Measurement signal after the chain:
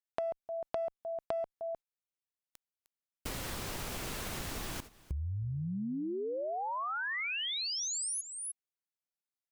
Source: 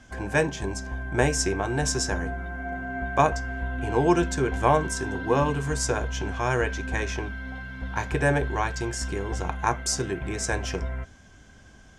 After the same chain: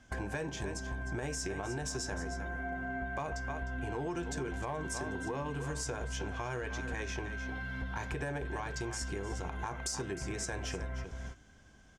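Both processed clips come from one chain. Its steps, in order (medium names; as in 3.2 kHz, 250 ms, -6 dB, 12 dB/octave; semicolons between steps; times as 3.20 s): delay 306 ms -14.5 dB; in parallel at -4.5 dB: one-sided clip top -20.5 dBFS; on the sum: gate -40 dBFS, range -14 dB; peak limiter -14.5 dBFS; compression 5:1, threshold -38 dBFS; trim +1.5 dB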